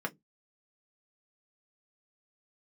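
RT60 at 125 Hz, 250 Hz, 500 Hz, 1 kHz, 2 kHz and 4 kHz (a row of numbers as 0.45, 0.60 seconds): 0.30, 0.25, 0.20, 0.10, 0.10, 0.10 seconds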